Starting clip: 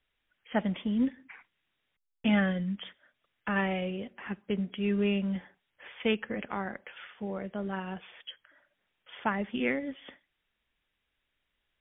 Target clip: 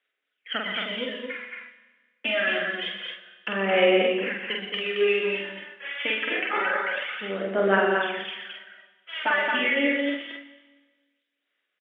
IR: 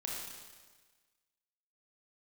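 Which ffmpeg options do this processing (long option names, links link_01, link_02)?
-filter_complex "[0:a]aemphasis=mode=production:type=riaa,agate=range=-15dB:threshold=-60dB:ratio=16:detection=peak,equalizer=frequency=900:width=2:gain=-10.5,acompressor=threshold=-33dB:ratio=6,aphaser=in_gain=1:out_gain=1:delay=3.6:decay=0.76:speed=0.26:type=sinusoidal,highpass=380,lowpass=2500,asplit=2[link_01][link_02];[link_02]adelay=46,volume=-2.5dB[link_03];[link_01][link_03]amix=inputs=2:normalize=0,aecho=1:1:122.4|221.6:0.398|0.631,asplit=2[link_04][link_05];[1:a]atrim=start_sample=2205[link_06];[link_05][link_06]afir=irnorm=-1:irlink=0,volume=-8.5dB[link_07];[link_04][link_07]amix=inputs=2:normalize=0,volume=7.5dB"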